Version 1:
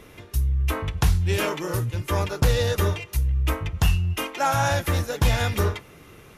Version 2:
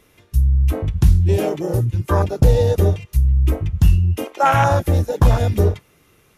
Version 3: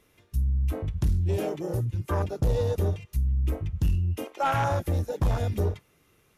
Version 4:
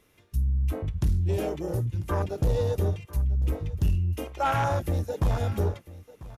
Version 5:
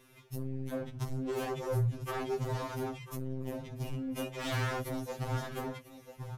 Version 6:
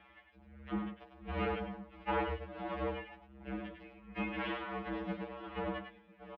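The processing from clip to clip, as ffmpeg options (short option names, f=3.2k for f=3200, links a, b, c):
-af "afwtdn=0.0631,highshelf=f=3.8k:g=7,volume=7.5dB"
-af "asoftclip=type=tanh:threshold=-9dB,volume=-8.5dB"
-af "aecho=1:1:994:0.119"
-filter_complex "[0:a]asplit=2[a][b];[b]acompressor=threshold=-34dB:ratio=12,volume=-2dB[c];[a][c]amix=inputs=2:normalize=0,asoftclip=type=hard:threshold=-27.5dB,afftfilt=real='re*2.45*eq(mod(b,6),0)':imag='im*2.45*eq(mod(b,6),0)':win_size=2048:overlap=0.75"
-af "tremolo=f=1.4:d=0.78,highpass=f=530:t=q:w=0.5412,highpass=f=530:t=q:w=1.307,lowpass=f=3.3k:t=q:w=0.5176,lowpass=f=3.3k:t=q:w=0.7071,lowpass=f=3.3k:t=q:w=1.932,afreqshift=-320,aecho=1:1:101:0.473,volume=6dB"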